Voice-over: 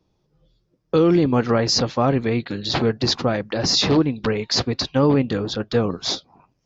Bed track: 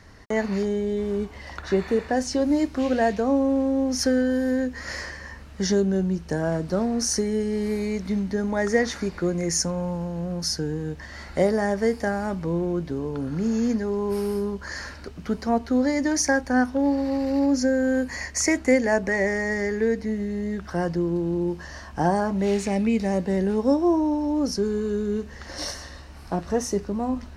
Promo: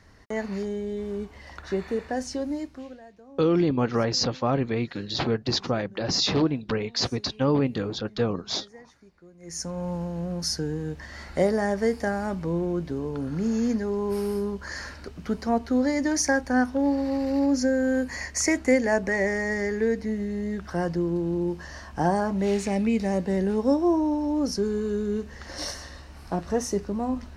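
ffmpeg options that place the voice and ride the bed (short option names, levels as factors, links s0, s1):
-filter_complex "[0:a]adelay=2450,volume=0.531[s0];[1:a]volume=10,afade=t=out:st=2.27:d=0.74:silence=0.0841395,afade=t=in:st=9.39:d=0.55:silence=0.0530884[s1];[s0][s1]amix=inputs=2:normalize=0"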